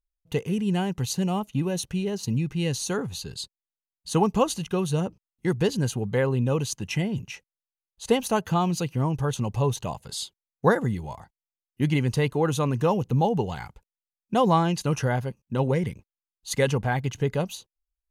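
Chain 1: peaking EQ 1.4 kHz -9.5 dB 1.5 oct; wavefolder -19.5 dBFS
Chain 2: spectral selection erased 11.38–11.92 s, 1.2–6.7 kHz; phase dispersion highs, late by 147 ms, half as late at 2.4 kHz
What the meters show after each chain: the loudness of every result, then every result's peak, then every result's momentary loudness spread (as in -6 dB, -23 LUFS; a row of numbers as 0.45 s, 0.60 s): -29.0 LUFS, -26.5 LUFS; -19.5 dBFS, -8.5 dBFS; 9 LU, 11 LU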